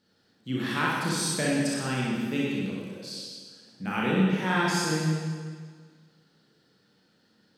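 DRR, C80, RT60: -6.0 dB, 0.0 dB, 1.7 s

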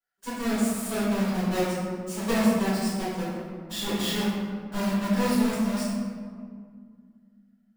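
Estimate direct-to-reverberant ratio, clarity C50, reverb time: -14.0 dB, -1.5 dB, 2.1 s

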